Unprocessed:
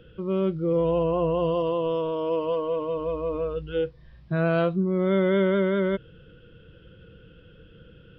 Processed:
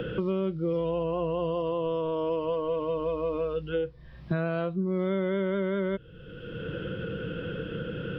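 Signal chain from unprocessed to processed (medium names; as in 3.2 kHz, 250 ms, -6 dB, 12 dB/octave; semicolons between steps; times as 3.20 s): three bands compressed up and down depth 100%; trim -5 dB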